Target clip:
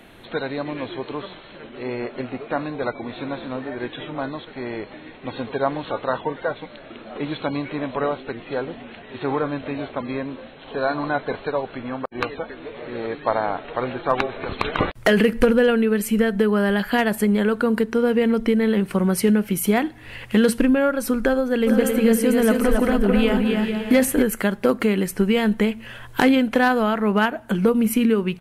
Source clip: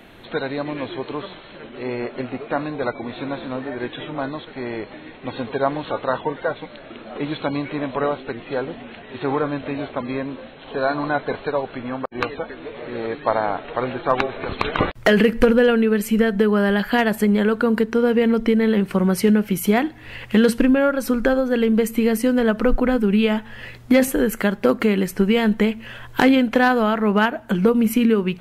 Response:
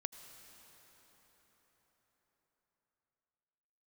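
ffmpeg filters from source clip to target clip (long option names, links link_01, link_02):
-filter_complex "[0:a]equalizer=frequency=9900:width=1.7:gain=6.5,asplit=3[link_01][link_02][link_03];[link_01]afade=type=out:start_time=21.66:duration=0.02[link_04];[link_02]aecho=1:1:270|445.5|559.6|633.7|681.9:0.631|0.398|0.251|0.158|0.1,afade=type=in:start_time=21.66:duration=0.02,afade=type=out:start_time=24.21:duration=0.02[link_05];[link_03]afade=type=in:start_time=24.21:duration=0.02[link_06];[link_04][link_05][link_06]amix=inputs=3:normalize=0,volume=-1.5dB"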